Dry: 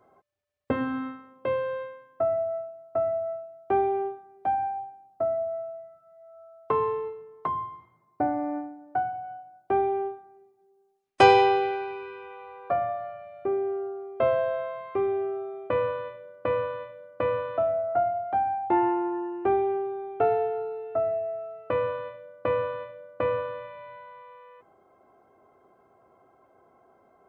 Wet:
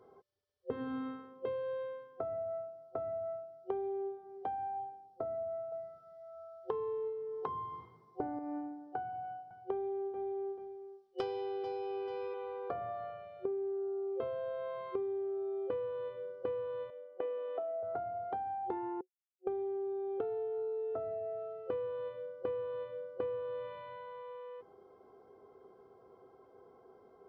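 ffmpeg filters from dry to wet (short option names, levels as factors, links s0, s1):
-filter_complex "[0:a]asettb=1/sr,asplit=3[s0][s1][s2];[s0]atrim=end=5.724[s3];[s1]atrim=start=5.72:end=8.39,asetpts=PTS-STARTPTS,afade=t=in:d=0.004:c=qsin,afade=t=out:st=2.666:d=0.004:c=qsin,acontrast=35[s4];[s2]atrim=start=8.386[s5];[s3][s4]acrossfade=d=0.004:c1=hsin:c2=qsin[s6];[s6][s5]acrossfade=d=0.004:c1=qsin:c2=hsin,asettb=1/sr,asplit=3[s7][s8][s9];[s7]atrim=end=9.074[s10];[s8]atrim=start=9.07:end=12.34,asetpts=PTS-STARTPTS,afade=t=in:d=0.004:c=qsin,afade=t=out:st=3.266:d=0.004:c=qsin,aecho=1:1:437|874:0.224|0.0381,atrim=end_sample=144207[s11];[s9]atrim=start=12.336[s12];[s10][s11]acrossfade=d=0.004:c1=hsin:c2=qsin[s13];[s13][s12]acrossfade=d=0.004:c1=qsin:c2=hsin,asettb=1/sr,asplit=3[s14][s15][s16];[s14]atrim=end=16.904[s17];[s15]atrim=start=16.9:end=17.83,asetpts=PTS-STARTPTS,afade=t=in:d=0.004:c=qsin,afade=t=out:st=0.926:d=0.004:c=qsin,highpass=f=320:w=0.5412,highpass=f=320:w=1.3066,equalizer=f=510:t=q:w=4:g=-7,equalizer=f=740:t=q:w=4:g=7,equalizer=f=1000:t=q:w=4:g=-10,equalizer=f=1500:t=q:w=4:g=-9,equalizer=f=2300:t=q:w=4:g=-4,lowpass=f=2900:w=0.5412,lowpass=f=2900:w=1.3066[s18];[s16]atrim=start=17.826[s19];[s17][s18]acrossfade=d=0.004:c1=hsin:c2=qsin[s20];[s20][s19]acrossfade=d=0.004:c1=qsin:c2=hsin,asplit=3[s21][s22][s23];[s21]atrim=end=19.01,asetpts=PTS-STARTPTS,afade=t=out:st=19.006:d=0.004:c=hsin[s24];[s22]atrim=start=19.01:end=19.47,asetpts=PTS-STARTPTS,volume=0[s25];[s23]atrim=start=19.47,asetpts=PTS-STARTPTS,afade=t=in:d=0.004:c=hsin[s26];[s24][s25][s26]concat=n=3:v=0:a=1,superequalizer=7b=2.51:8b=0.631:13b=2.82:14b=3.98,acompressor=threshold=0.0224:ratio=16,highshelf=f=2000:g=-11,volume=0.891"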